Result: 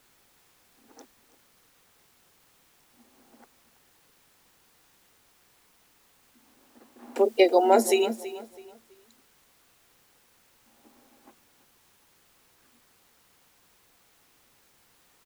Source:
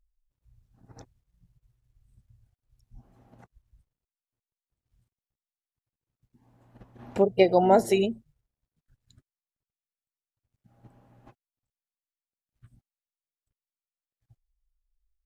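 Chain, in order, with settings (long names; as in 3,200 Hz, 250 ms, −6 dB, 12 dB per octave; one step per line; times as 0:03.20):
Chebyshev high-pass filter 220 Hz, order 10
high-shelf EQ 5,800 Hz +11 dB
repeating echo 328 ms, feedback 31%, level −15 dB
in parallel at −7 dB: bit-depth reduction 8 bits, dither triangular
on the sum: notch filter 620 Hz, Q 12
one half of a high-frequency compander decoder only
level −1.5 dB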